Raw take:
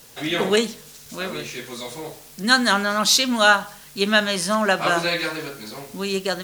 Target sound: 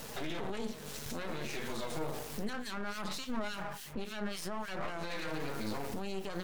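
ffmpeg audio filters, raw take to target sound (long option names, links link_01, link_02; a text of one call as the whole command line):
ffmpeg -i in.wav -filter_complex "[0:a]asettb=1/sr,asplit=3[link_01][link_02][link_03];[link_01]atrim=end=2.534[link_04];[link_02]atrim=start=2.53:end=4.88,asetpts=PTS-STARTPTS,afade=type=in:duration=0.004:curve=qsin,afade=type=out:start_time=2.346:duration=0.004:curve=qsin,acrossover=split=2100[link_05][link_06];[link_05]aeval=exprs='val(0)*(1-1/2+1/2*cos(2*PI*3.5*n/s))':channel_layout=same[link_07];[link_06]aeval=exprs='val(0)*(1-1/2-1/2*cos(2*PI*3.5*n/s))':channel_layout=same[link_08];[link_07][link_08]amix=inputs=2:normalize=0[link_09];[link_03]atrim=start=4.876[link_10];[link_04][link_09]acrossfade=duration=0.004:curve1=hsin:curve2=qsin[link_11];[link_11][link_10]acrossfade=duration=0.004:curve1=qsin:curve2=hsin,acompressor=threshold=-33dB:ratio=10,highshelf=frequency=2200:gain=-11,bandreject=frequency=60:width_type=h:width=6,bandreject=frequency=120:width_type=h:width=6,bandreject=frequency=180:width_type=h:width=6,bandreject=frequency=240:width_type=h:width=6,bandreject=frequency=300:width_type=h:width=6,bandreject=frequency=360:width_type=h:width=6,bandreject=frequency=420:width_type=h:width=6,aeval=exprs='clip(val(0),-1,0.00106)':channel_layout=same,alimiter=level_in=14.5dB:limit=-24dB:level=0:latency=1:release=34,volume=-14.5dB,flanger=delay=4.5:depth=5.2:regen=69:speed=0.6:shape=sinusoidal,volume=15dB" out.wav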